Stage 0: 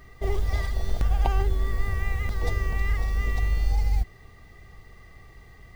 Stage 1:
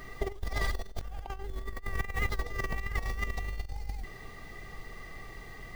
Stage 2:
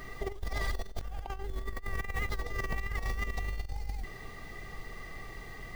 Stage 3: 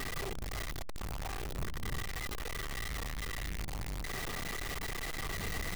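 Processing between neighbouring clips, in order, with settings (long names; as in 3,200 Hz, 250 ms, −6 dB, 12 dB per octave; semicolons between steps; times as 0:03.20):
parametric band 74 Hz −11 dB 1.4 octaves; compressor whose output falls as the input rises −32 dBFS, ratio −0.5
brickwall limiter −24 dBFS, peak gain reduction 7.5 dB; level +1 dB
sign of each sample alone; wind on the microphone 120 Hz −45 dBFS; level −2.5 dB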